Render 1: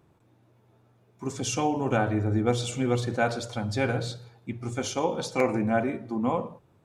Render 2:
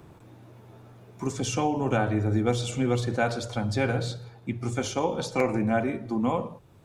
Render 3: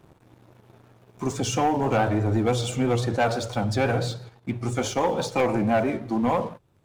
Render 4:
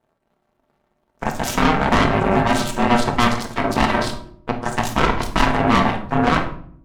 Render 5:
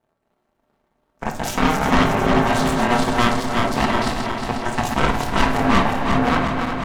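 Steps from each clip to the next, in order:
low shelf 60 Hz +7.5 dB; three-band squash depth 40%
dynamic EQ 770 Hz, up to +5 dB, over -38 dBFS, Q 1.1; vibrato 6 Hz 58 cents; sample leveller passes 2; gain -5 dB
ring modulator 480 Hz; added harmonics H 4 -8 dB, 5 -18 dB, 7 -12 dB, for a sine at -13 dBFS; shoebox room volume 850 m³, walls furnished, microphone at 1.6 m; gain +4.5 dB
regenerating reverse delay 0.18 s, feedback 79%, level -6 dB; gain -2.5 dB

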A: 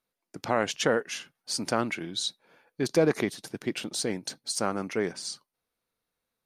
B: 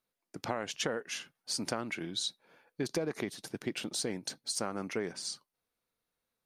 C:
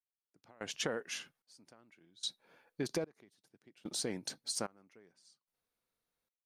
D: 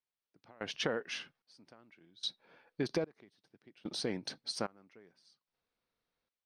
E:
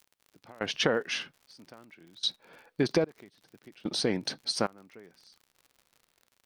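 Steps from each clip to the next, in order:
compressor 12:1, threshold -27 dBFS, peak gain reduction 10.5 dB; gain -2.5 dB
step gate "...xxxx." 74 bpm -24 dB; gain -2.5 dB
polynomial smoothing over 15 samples; gain +2.5 dB
crackle 68/s -53 dBFS; gain +8 dB

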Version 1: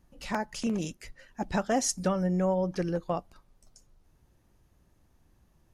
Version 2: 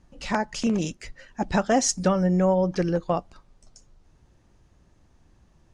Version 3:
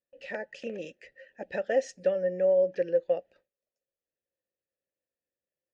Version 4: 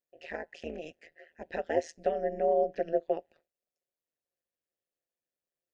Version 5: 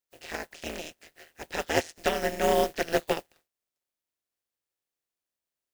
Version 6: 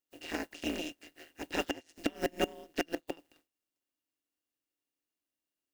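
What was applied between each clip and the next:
LPF 8200 Hz 24 dB/oct; gain +6 dB
vowel filter e; gate with hold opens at -57 dBFS; gain +3.5 dB
AM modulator 160 Hz, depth 95%; gain +1 dB
spectral contrast lowered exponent 0.4; flange 0.64 Hz, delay 2.2 ms, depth 1.1 ms, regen -70%; gain +7 dB
flipped gate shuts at -14 dBFS, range -25 dB; small resonant body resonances 290/2800 Hz, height 15 dB, ringing for 60 ms; gain -3.5 dB

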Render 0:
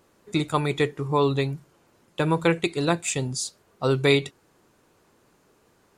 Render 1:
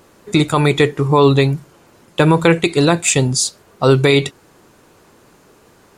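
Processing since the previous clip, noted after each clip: maximiser +13.5 dB; gain -1 dB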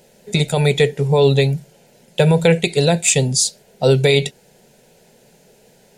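fixed phaser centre 310 Hz, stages 6; gain +1 dB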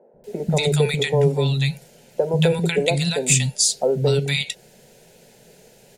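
compressor 2.5:1, threshold -18 dBFS, peak gain reduction 7 dB; three bands offset in time mids, lows, highs 0.14/0.24 s, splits 250/980 Hz; gain +2 dB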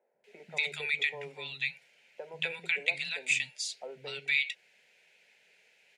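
band-pass 2300 Hz, Q 3.4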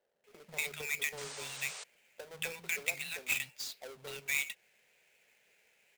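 half-waves squared off; painted sound noise, 1.17–1.84, 390–9200 Hz -38 dBFS; gain -8 dB

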